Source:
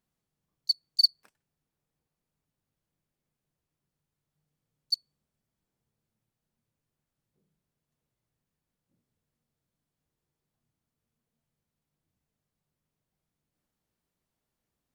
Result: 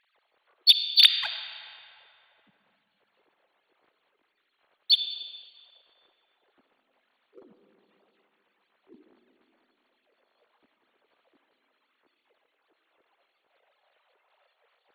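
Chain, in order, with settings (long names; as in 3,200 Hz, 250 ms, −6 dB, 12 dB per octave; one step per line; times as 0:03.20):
three sine waves on the formant tracks
pitch-shifted copies added +4 semitones −2 dB
leveller curve on the samples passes 1
on a send: convolution reverb RT60 3.0 s, pre-delay 15 ms, DRR 7 dB
on the sum: level +3 dB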